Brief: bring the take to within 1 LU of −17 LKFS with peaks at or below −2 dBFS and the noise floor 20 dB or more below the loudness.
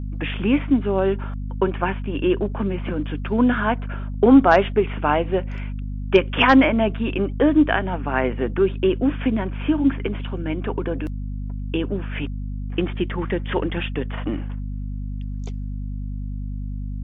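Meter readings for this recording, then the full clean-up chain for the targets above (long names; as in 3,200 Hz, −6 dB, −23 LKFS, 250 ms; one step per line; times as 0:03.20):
mains hum 50 Hz; hum harmonics up to 250 Hz; level of the hum −26 dBFS; integrated loudness −22.0 LKFS; sample peak −2.5 dBFS; target loudness −17.0 LKFS
→ mains-hum notches 50/100/150/200/250 Hz
level +5 dB
brickwall limiter −2 dBFS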